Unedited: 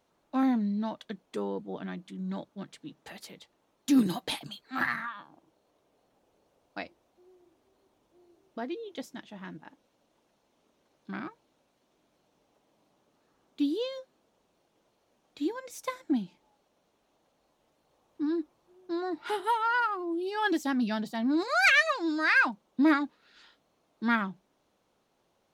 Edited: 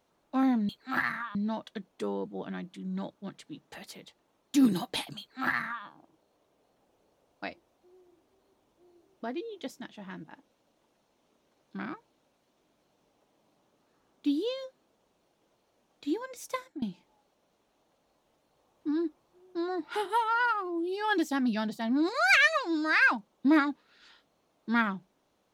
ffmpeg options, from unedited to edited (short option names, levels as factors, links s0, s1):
-filter_complex "[0:a]asplit=4[s0][s1][s2][s3];[s0]atrim=end=0.692[s4];[s1]atrim=start=4.528:end=5.192[s5];[s2]atrim=start=0.688:end=16.16,asetpts=PTS-STARTPTS,afade=t=out:st=15.212:d=0.26:silence=0.0749894[s6];[s3]atrim=start=16.16,asetpts=PTS-STARTPTS,afade=t=in:d=0.004:c=hsin:silence=0.0749894[s7];[s4][s5]acrossfade=d=0.004:c1=hsin:c2=hsin[s8];[s6][s7]concat=n=2:v=0:a=1[s9];[s8][s9]acrossfade=d=0.004:c1=hsin:c2=hsin"